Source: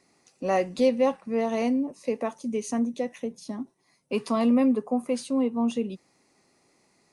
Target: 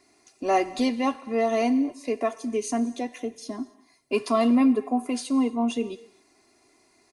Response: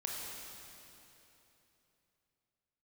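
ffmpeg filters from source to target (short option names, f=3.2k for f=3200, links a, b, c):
-filter_complex "[0:a]aecho=1:1:2.9:0.79,asplit=2[a][b];[b]lowshelf=f=400:g=-12[c];[1:a]atrim=start_sample=2205,afade=t=out:st=0.33:d=0.01,atrim=end_sample=14994[d];[c][d]afir=irnorm=-1:irlink=0,volume=-11dB[e];[a][e]amix=inputs=2:normalize=0"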